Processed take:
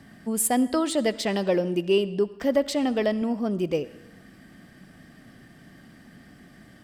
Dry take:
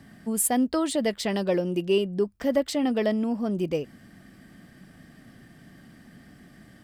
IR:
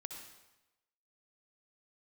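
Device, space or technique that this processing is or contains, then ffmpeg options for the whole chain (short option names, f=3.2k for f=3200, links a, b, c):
filtered reverb send: -filter_complex "[0:a]asplit=2[a][b];[b]highpass=210,lowpass=8.7k[c];[1:a]atrim=start_sample=2205[d];[c][d]afir=irnorm=-1:irlink=0,volume=-7.5dB[e];[a][e]amix=inputs=2:normalize=0,asettb=1/sr,asplit=3[f][g][h];[f]atrim=end=2.594[i];[g]atrim=start=2.59:end=3.22,asetpts=PTS-STARTPTS,afade=t=in:d=0.004:c=qsin,afade=t=out:st=0.626:d=0.004:c=qsin,asubboost=boost=11.5:cutoff=120[j];[h]atrim=start=3.216[k];[i][j]acrossfade=d=0.004:c1=hsin:c2=qsin[l];[l][k]acrossfade=d=0.004:c1=qsin:c2=hsin"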